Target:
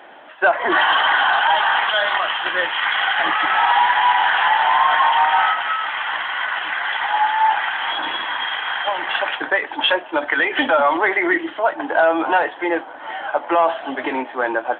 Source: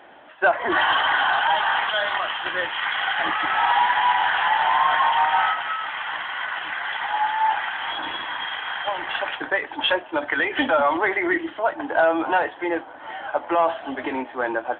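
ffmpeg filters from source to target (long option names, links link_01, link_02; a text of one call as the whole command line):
ffmpeg -i in.wav -filter_complex "[0:a]highpass=frequency=280:poles=1,asplit=2[link_01][link_02];[link_02]alimiter=limit=-14dB:level=0:latency=1:release=163,volume=-1dB[link_03];[link_01][link_03]amix=inputs=2:normalize=0" out.wav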